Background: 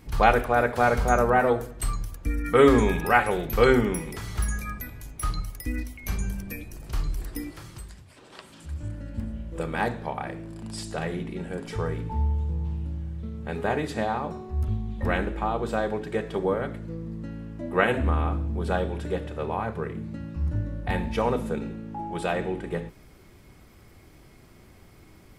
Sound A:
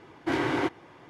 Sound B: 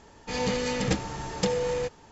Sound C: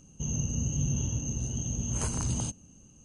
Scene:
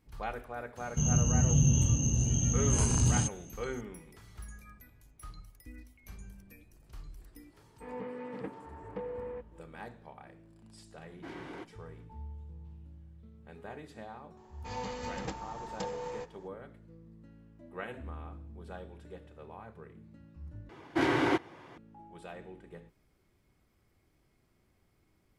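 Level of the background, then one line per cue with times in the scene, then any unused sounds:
background −19 dB
0:00.77: mix in C −2 dB + harmonic and percussive parts rebalanced harmonic +8 dB
0:07.53: mix in B −16 dB + loudspeaker in its box 160–2,100 Hz, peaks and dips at 270 Hz +8 dB, 430 Hz +8 dB, 1,000 Hz +7 dB
0:10.96: mix in A −18 dB
0:14.37: mix in B −14.5 dB + parametric band 920 Hz +10.5 dB 0.91 octaves
0:20.69: overwrite with A −0.5 dB

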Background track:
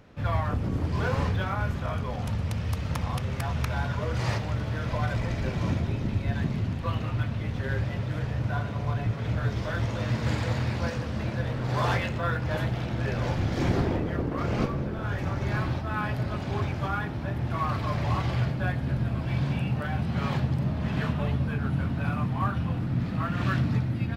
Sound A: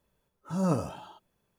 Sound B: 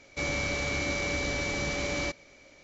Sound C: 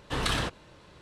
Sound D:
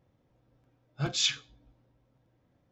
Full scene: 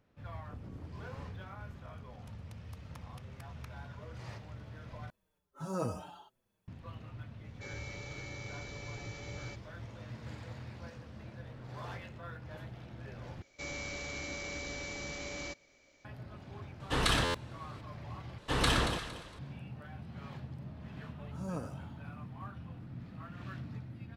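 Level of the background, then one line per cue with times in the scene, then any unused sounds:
background track −18 dB
0:05.10: overwrite with A −2.5 dB + barber-pole flanger 5.7 ms −1.5 Hz
0:07.44: mix in B −17.5 dB + comb filter 2.3 ms, depth 68%
0:13.42: overwrite with B −11 dB + high-shelf EQ 6,300 Hz +6.5 dB
0:16.80: mix in C −0.5 dB + buffer that repeats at 0:00.44
0:18.38: overwrite with C −1 dB + delay that swaps between a low-pass and a high-pass 115 ms, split 1,300 Hz, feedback 53%, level −3 dB
0:20.85: mix in A −12 dB
not used: D

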